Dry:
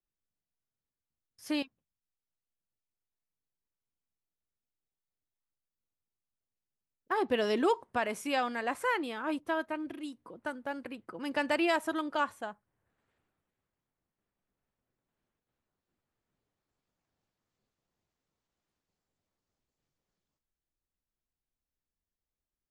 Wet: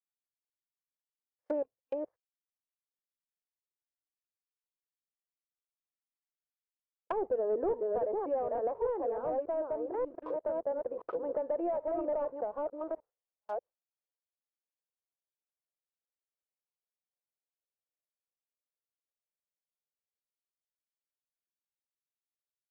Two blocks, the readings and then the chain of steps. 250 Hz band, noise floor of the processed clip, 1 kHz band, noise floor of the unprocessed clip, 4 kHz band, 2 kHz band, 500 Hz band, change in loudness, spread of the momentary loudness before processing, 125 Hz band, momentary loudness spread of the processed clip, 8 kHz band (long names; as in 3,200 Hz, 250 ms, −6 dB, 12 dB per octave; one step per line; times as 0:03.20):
−7.0 dB, below −85 dBFS, −4.5 dB, below −85 dBFS, below −30 dB, −21.0 dB, +3.5 dB, −2.0 dB, 15 LU, can't be measured, 8 LU, below −25 dB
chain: delay that plays each chunk backwards 591 ms, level −5 dB
low-pass filter 1,100 Hz 12 dB per octave
noise gate with hold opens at −49 dBFS
low shelf with overshoot 350 Hz −13 dB, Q 3
downward compressor 5 to 1, threshold −30 dBFS, peak gain reduction 10.5 dB
leveller curve on the samples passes 2
treble cut that deepens with the level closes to 560 Hz, closed at −30.5 dBFS